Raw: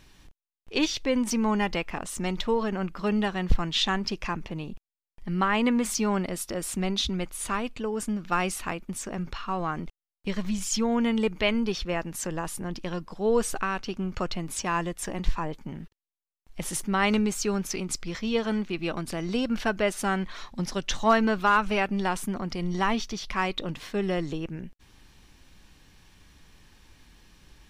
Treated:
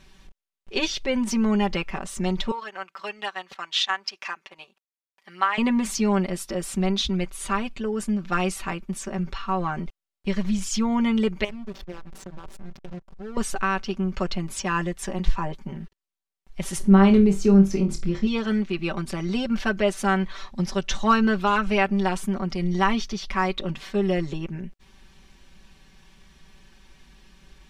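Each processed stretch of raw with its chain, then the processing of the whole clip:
2.51–5.58 HPF 870 Hz + transient shaper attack +1 dB, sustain -9 dB
11.44–13.37 compressor 3:1, threshold -34 dBFS + backlash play -28.5 dBFS
16.78–18.27 tilt shelf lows +8 dB, about 680 Hz + flutter echo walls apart 4.4 m, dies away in 0.22 s
whole clip: high shelf 11000 Hz -10 dB; comb 5.2 ms, depth 84%

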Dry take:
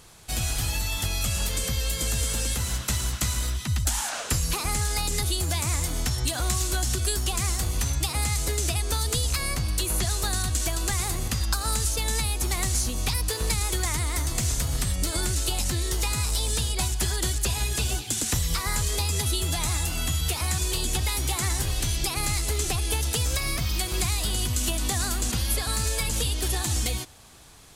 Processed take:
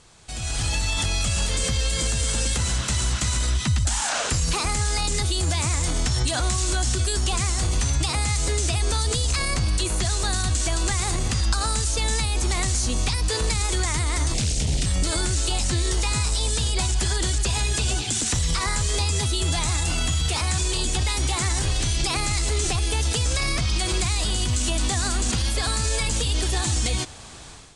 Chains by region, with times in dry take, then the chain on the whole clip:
14.34–14.86 band shelf 1200 Hz -15 dB 1.3 oct + Doppler distortion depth 0.99 ms
whole clip: limiter -24 dBFS; AGC gain up to 11.5 dB; steep low-pass 9500 Hz 48 dB/oct; gain -2 dB

